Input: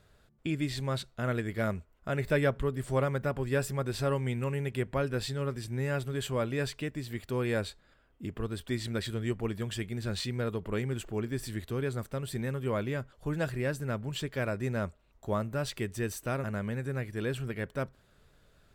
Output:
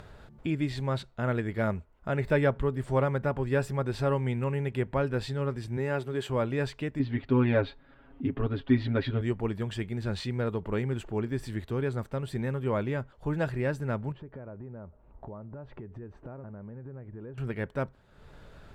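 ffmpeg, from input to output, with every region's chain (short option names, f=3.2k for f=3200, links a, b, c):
-filter_complex "[0:a]asettb=1/sr,asplit=3[a][b][c];[a]atrim=end=5.774[d];[b]atrim=start=5.77:end=6.3,asetpts=PTS-STARTPTS,afade=t=in:d=0.004:c=qsin,afade=t=out:st=0.526:d=0.004:c=qsin,highpass=160,equalizer=f=380:w=5.9:g=5[e];[c]atrim=start=6.296[f];[d][e]acrossfade=d=0.004:c1=hsin:c2=qsin[g];[g][f]acrossfade=d=0.004:c1=qsin:c2=hsin,asettb=1/sr,asplit=3[h][i][j];[h]atrim=end=6.994[k];[i]atrim=start=6.99:end=9.21,asetpts=PTS-STARTPTS,afade=t=in:d=0.004:c=qsin,afade=t=out:st=2.216:d=0.004:c=qsin,lowpass=f=4k:w=0.5412,lowpass=f=4k:w=1.3066,equalizer=f=270:t=o:w=0.4:g=9,aecho=1:1:7.3:0.91,atrim=end_sample=97902[l];[j]atrim=start=9.206[m];[k][l]acrossfade=d=0.004:c1=hsin:c2=qsin[n];[n][m]acrossfade=d=0.004:c1=qsin:c2=hsin,asettb=1/sr,asplit=3[o][p][q];[o]atrim=end=14.124[r];[p]atrim=start=14.12:end=17.38,asetpts=PTS-STARTPTS,afade=t=in:d=0.004:c=qsin,afade=t=out:st=3.256:d=0.004:c=qsin,lowpass=1k,acompressor=threshold=-43dB:ratio=5:attack=3.2:release=140:knee=1:detection=peak[s];[q]atrim=start=17.376[t];[r][s]acrossfade=d=0.004:c1=hsin:c2=qsin[u];[u][t]acrossfade=d=0.004:c1=qsin:c2=hsin,lowpass=f=2.3k:p=1,equalizer=f=880:t=o:w=0.2:g=6.5,acompressor=mode=upward:threshold=-41dB:ratio=2.5,volume=2.5dB"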